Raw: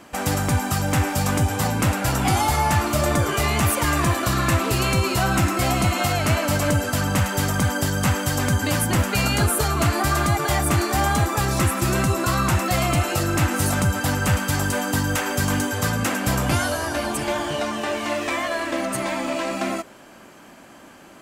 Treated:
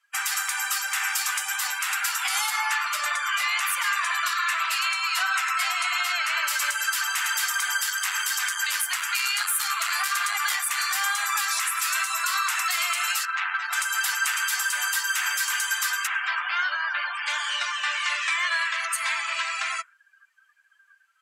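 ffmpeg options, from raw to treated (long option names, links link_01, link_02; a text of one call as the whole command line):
ffmpeg -i in.wav -filter_complex "[0:a]asettb=1/sr,asplit=3[link_01][link_02][link_03];[link_01]atrim=end=2.504[link_04];[link_02]atrim=start=2.5:end=6.47,asetpts=PTS-STARTPTS,afade=type=in:duration=0.004:curve=qsin,afade=type=out:start_time=3.966:duration=0.004:curve=qsin,highshelf=frequency=4500:gain=-7.5[link_05];[link_03]atrim=start=6.466[link_06];[link_04][link_05]acrossfade=duration=0.004:curve1=hsin:curve2=qsin[link_07];[link_07][link_06]acrossfade=duration=0.004:curve1=qsin:curve2=hsin,asettb=1/sr,asplit=3[link_08][link_09][link_10];[link_08]atrim=end=7.864[link_11];[link_09]atrim=start=7.86:end=10.76,asetpts=PTS-STARTPTS,afade=type=in:duration=0.004:curve=qsin,afade=type=out:start_time=2.896:duration=0.004:curve=qsin,aeval=exprs='clip(val(0),-1,0.0794)':channel_layout=same[link_12];[link_10]atrim=start=10.756[link_13];[link_11][link_12]acrossfade=duration=0.004:curve1=hsin:curve2=qsin[link_14];[link_14][link_13]acrossfade=duration=0.004:curve1=qsin:curve2=hsin,asettb=1/sr,asplit=3[link_15][link_16][link_17];[link_15]atrim=end=13.254[link_18];[link_16]atrim=start=13.25:end=13.73,asetpts=PTS-STARTPTS,afade=type=in:duration=0.004:curve=qsin,afade=type=out:start_time=0.476:duration=0.004:curve=qsin,adynamicsmooth=sensitivity=1.5:basefreq=1400[link_19];[link_17]atrim=start=13.726[link_20];[link_18][link_19]acrossfade=duration=0.004:curve1=hsin:curve2=qsin[link_21];[link_21][link_20]acrossfade=duration=0.004:curve1=qsin:curve2=hsin,asplit=3[link_22][link_23][link_24];[link_22]afade=type=out:start_time=16.06:duration=0.02[link_25];[link_23]lowpass=2800,afade=type=in:start_time=16.06:duration=0.02,afade=type=out:start_time=17.25:duration=0.02[link_26];[link_24]afade=type=in:start_time=17.25:duration=0.02[link_27];[link_25][link_26][link_27]amix=inputs=3:normalize=0,highpass=frequency=1300:width=0.5412,highpass=frequency=1300:width=1.3066,afftdn=noise_reduction=29:noise_floor=-41,alimiter=limit=-21dB:level=0:latency=1:release=107,volume=6dB" out.wav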